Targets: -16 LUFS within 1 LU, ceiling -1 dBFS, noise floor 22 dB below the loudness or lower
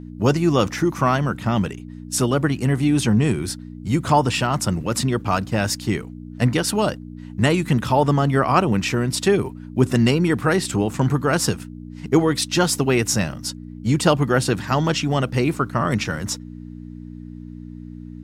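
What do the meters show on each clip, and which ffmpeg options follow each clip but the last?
hum 60 Hz; highest harmonic 300 Hz; hum level -36 dBFS; loudness -20.5 LUFS; peak level -3.5 dBFS; loudness target -16.0 LUFS
-> -af "bandreject=f=60:t=h:w=4,bandreject=f=120:t=h:w=4,bandreject=f=180:t=h:w=4,bandreject=f=240:t=h:w=4,bandreject=f=300:t=h:w=4"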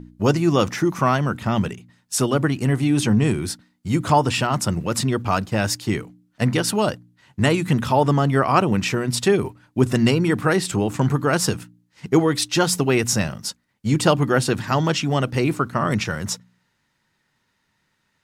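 hum not found; loudness -21.0 LUFS; peak level -3.5 dBFS; loudness target -16.0 LUFS
-> -af "volume=1.78,alimiter=limit=0.891:level=0:latency=1"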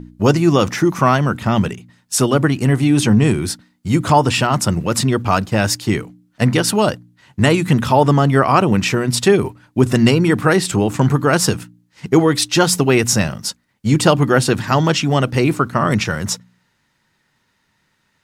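loudness -16.0 LUFS; peak level -1.0 dBFS; noise floor -65 dBFS

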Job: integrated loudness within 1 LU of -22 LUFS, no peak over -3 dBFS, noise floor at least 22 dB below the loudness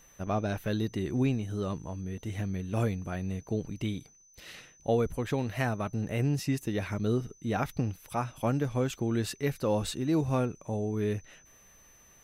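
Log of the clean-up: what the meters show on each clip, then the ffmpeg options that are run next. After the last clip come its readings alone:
steady tone 6.1 kHz; tone level -58 dBFS; loudness -32.0 LUFS; peak level -16.0 dBFS; loudness target -22.0 LUFS
-> -af "bandreject=f=6100:w=30"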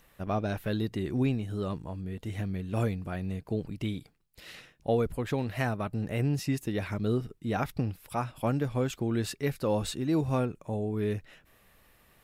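steady tone not found; loudness -32.0 LUFS; peak level -15.5 dBFS; loudness target -22.0 LUFS
-> -af "volume=3.16"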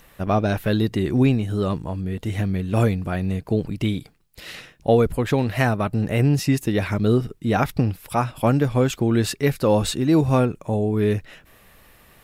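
loudness -22.0 LUFS; peak level -5.5 dBFS; noise floor -53 dBFS

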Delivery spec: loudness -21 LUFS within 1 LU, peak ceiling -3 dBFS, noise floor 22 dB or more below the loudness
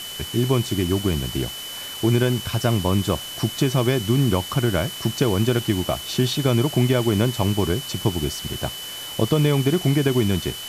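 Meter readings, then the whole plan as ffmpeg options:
steady tone 3 kHz; tone level -33 dBFS; noise floor -34 dBFS; noise floor target -44 dBFS; loudness -22.0 LUFS; peak level -5.5 dBFS; loudness target -21.0 LUFS
-> -af "bandreject=f=3000:w=30"
-af "afftdn=nr=10:nf=-34"
-af "volume=1.12"

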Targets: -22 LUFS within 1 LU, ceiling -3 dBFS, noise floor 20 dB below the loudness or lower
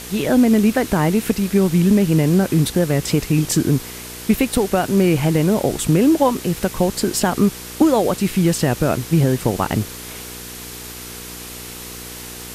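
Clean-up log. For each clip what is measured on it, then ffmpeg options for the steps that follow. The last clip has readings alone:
hum 60 Hz; highest harmonic 480 Hz; hum level -38 dBFS; noise floor -34 dBFS; noise floor target -38 dBFS; loudness -17.5 LUFS; peak level -2.5 dBFS; loudness target -22.0 LUFS
-> -af "bandreject=f=60:t=h:w=4,bandreject=f=120:t=h:w=4,bandreject=f=180:t=h:w=4,bandreject=f=240:t=h:w=4,bandreject=f=300:t=h:w=4,bandreject=f=360:t=h:w=4,bandreject=f=420:t=h:w=4,bandreject=f=480:t=h:w=4"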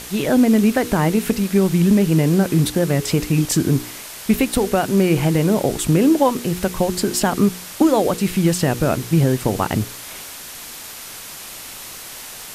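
hum not found; noise floor -35 dBFS; noise floor target -38 dBFS
-> -af "afftdn=nr=6:nf=-35"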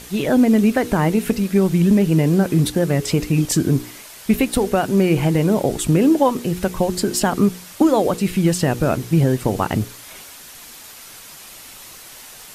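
noise floor -40 dBFS; loudness -18.0 LUFS; peak level -3.5 dBFS; loudness target -22.0 LUFS
-> -af "volume=0.631"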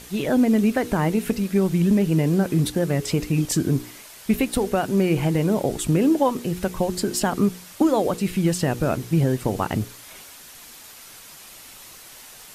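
loudness -22.0 LUFS; peak level -7.5 dBFS; noise floor -44 dBFS

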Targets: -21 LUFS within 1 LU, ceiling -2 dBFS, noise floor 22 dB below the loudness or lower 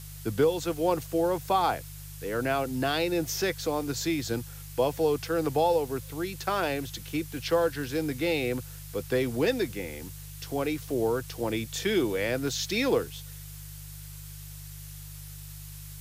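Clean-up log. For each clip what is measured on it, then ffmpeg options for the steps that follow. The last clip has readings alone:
hum 50 Hz; highest harmonic 150 Hz; hum level -42 dBFS; noise floor -43 dBFS; noise floor target -51 dBFS; loudness -29.0 LUFS; peak level -13.0 dBFS; loudness target -21.0 LUFS
-> -af "bandreject=f=50:t=h:w=4,bandreject=f=100:t=h:w=4,bandreject=f=150:t=h:w=4"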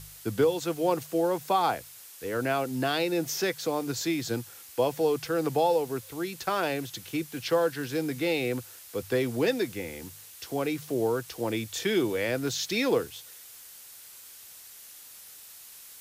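hum not found; noise floor -48 dBFS; noise floor target -51 dBFS
-> -af "afftdn=nr=6:nf=-48"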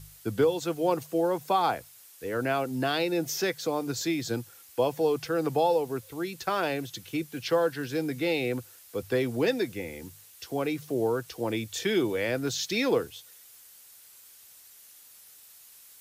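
noise floor -53 dBFS; loudness -29.0 LUFS; peak level -13.0 dBFS; loudness target -21.0 LUFS
-> -af "volume=2.51"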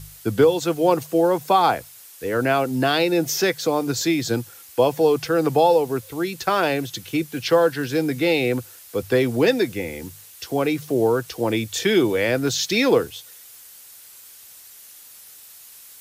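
loudness -21.0 LUFS; peak level -5.0 dBFS; noise floor -45 dBFS

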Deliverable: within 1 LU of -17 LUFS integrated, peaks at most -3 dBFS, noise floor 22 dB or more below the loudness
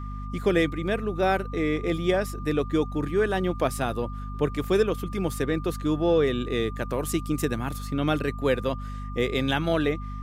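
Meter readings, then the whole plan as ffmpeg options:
hum 50 Hz; highest harmonic 250 Hz; hum level -32 dBFS; steady tone 1.2 kHz; tone level -41 dBFS; loudness -26.5 LUFS; peak level -9.5 dBFS; loudness target -17.0 LUFS
-> -af "bandreject=f=50:t=h:w=4,bandreject=f=100:t=h:w=4,bandreject=f=150:t=h:w=4,bandreject=f=200:t=h:w=4,bandreject=f=250:t=h:w=4"
-af "bandreject=f=1200:w=30"
-af "volume=2.99,alimiter=limit=0.708:level=0:latency=1"

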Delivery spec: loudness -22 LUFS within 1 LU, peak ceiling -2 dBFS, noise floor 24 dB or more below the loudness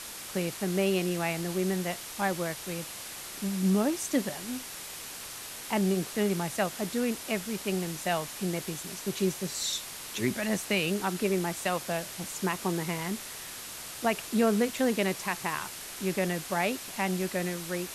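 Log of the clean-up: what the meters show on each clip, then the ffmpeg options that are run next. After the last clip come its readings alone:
noise floor -42 dBFS; noise floor target -55 dBFS; loudness -31.0 LUFS; peak level -14.5 dBFS; loudness target -22.0 LUFS
-> -af "afftdn=nr=13:nf=-42"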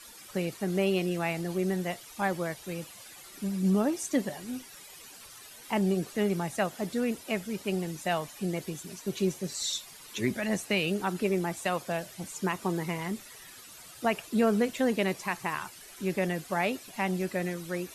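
noise floor -49 dBFS; noise floor target -55 dBFS
-> -af "afftdn=nr=6:nf=-49"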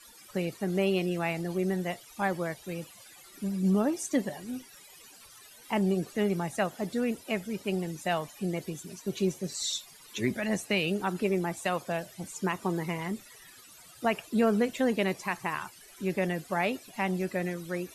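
noise floor -53 dBFS; noise floor target -55 dBFS
-> -af "afftdn=nr=6:nf=-53"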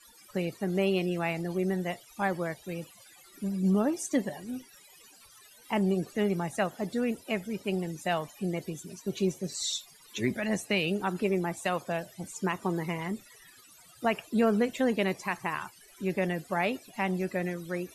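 noise floor -56 dBFS; loudness -31.0 LUFS; peak level -15.0 dBFS; loudness target -22.0 LUFS
-> -af "volume=2.82"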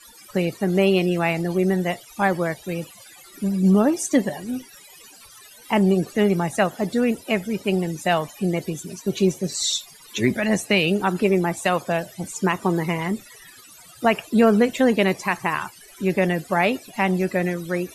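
loudness -22.0 LUFS; peak level -6.0 dBFS; noise floor -47 dBFS

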